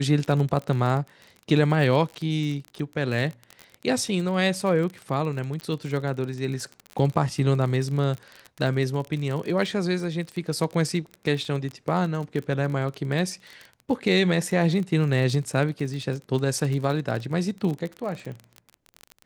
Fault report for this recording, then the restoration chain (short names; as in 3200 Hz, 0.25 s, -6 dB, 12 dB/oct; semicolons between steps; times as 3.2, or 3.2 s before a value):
crackle 29/s -29 dBFS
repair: de-click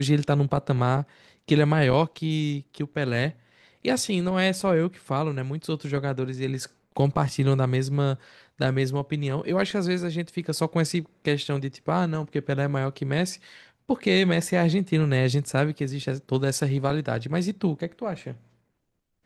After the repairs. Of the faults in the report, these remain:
none